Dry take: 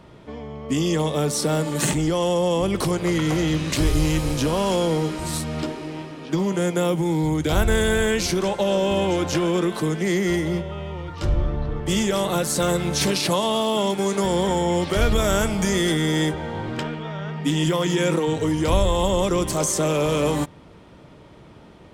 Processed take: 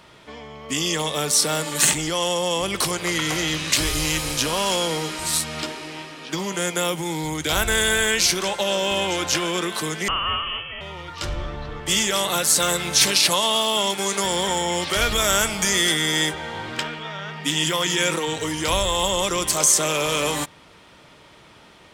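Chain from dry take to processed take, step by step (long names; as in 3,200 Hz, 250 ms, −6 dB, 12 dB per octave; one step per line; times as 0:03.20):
tilt shelving filter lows −8.5 dB, about 830 Hz
0:10.08–0:10.81: voice inversion scrambler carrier 3,200 Hz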